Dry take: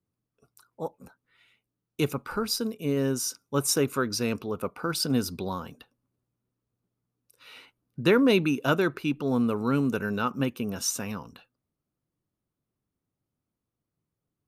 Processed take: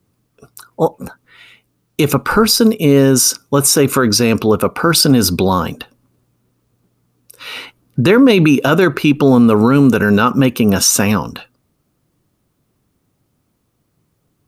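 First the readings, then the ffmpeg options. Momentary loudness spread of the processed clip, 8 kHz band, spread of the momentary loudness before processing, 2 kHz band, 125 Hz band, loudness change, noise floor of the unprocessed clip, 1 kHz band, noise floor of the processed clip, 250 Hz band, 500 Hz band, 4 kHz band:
9 LU, +16.5 dB, 14 LU, +14.0 dB, +16.0 dB, +15.0 dB, under -85 dBFS, +15.5 dB, -66 dBFS, +15.5 dB, +14.5 dB, +15.5 dB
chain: -af "alimiter=level_in=11.9:limit=0.891:release=50:level=0:latency=1,volume=0.891"

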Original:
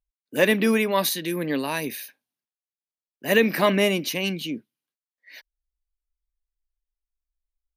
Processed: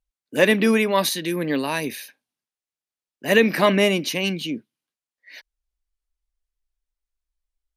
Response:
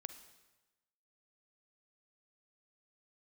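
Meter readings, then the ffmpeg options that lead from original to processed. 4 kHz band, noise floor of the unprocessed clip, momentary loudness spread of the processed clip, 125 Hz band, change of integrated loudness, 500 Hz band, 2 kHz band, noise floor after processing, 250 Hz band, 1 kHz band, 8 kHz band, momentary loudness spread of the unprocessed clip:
+2.5 dB, under -85 dBFS, 14 LU, +2.5 dB, +2.5 dB, +2.5 dB, +2.5 dB, under -85 dBFS, +2.5 dB, +2.5 dB, +1.5 dB, 14 LU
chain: -af "lowpass=11000,volume=1.33"

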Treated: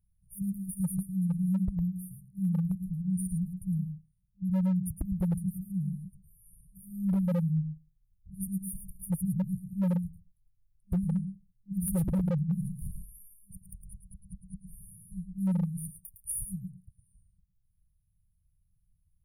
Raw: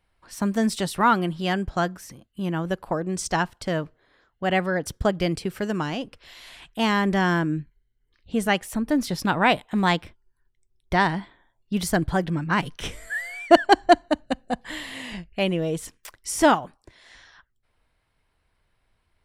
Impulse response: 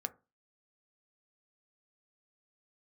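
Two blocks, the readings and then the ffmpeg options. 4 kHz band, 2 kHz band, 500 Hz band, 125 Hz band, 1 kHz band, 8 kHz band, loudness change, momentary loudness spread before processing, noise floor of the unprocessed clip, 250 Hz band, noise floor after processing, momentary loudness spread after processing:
under -35 dB, under -35 dB, -21.5 dB, 0.0 dB, -31.5 dB, -6.0 dB, -8.0 dB, 14 LU, -72 dBFS, -5.0 dB, -73 dBFS, 19 LU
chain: -filter_complex "[0:a]asplit=2[s0][s1];[1:a]atrim=start_sample=2205,adelay=109[s2];[s1][s2]afir=irnorm=-1:irlink=0,volume=0.422[s3];[s0][s3]amix=inputs=2:normalize=0,afftfilt=real='re*(1-between(b*sr/4096,200,9100))':imag='im*(1-between(b*sr/4096,200,9100))':win_size=4096:overlap=0.75,aeval=exprs='0.075*(abs(mod(val(0)/0.075+3,4)-2)-1)':c=same"

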